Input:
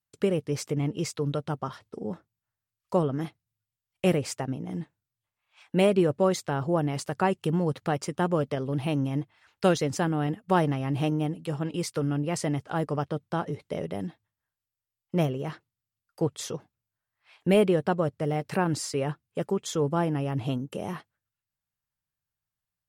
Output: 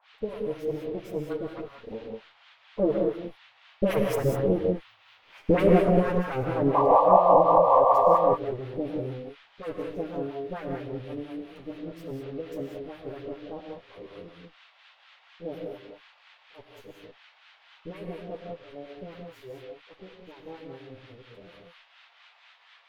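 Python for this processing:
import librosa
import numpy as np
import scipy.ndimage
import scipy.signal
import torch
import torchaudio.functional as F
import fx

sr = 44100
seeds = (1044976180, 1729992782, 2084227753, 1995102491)

p1 = fx.lower_of_two(x, sr, delay_ms=9.5)
p2 = fx.doppler_pass(p1, sr, speed_mps=19, closest_m=8.6, pass_at_s=4.97)
p3 = fx.graphic_eq(p2, sr, hz=(500, 4000, 8000), db=(10, -7, -11))
p4 = fx.spec_paint(p3, sr, seeds[0], shape='noise', start_s=6.73, length_s=1.42, low_hz=480.0, high_hz=1200.0, level_db=-21.0)
p5 = fx.dispersion(p4, sr, late='highs', ms=54.0, hz=1500.0)
p6 = fx.over_compress(p5, sr, threshold_db=-27.0, ratio=-1.0)
p7 = p5 + (p6 * 10.0 ** (-2.0 / 20.0))
p8 = fx.rotary(p7, sr, hz=5.0)
p9 = fx.dmg_noise_band(p8, sr, seeds[1], low_hz=720.0, high_hz=3600.0, level_db=-62.0)
p10 = fx.harmonic_tremolo(p9, sr, hz=4.2, depth_pct=100, crossover_hz=900.0)
p11 = fx.rev_gated(p10, sr, seeds[2], gate_ms=220, shape='rising', drr_db=1.5)
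y = p11 * 10.0 ** (7.0 / 20.0)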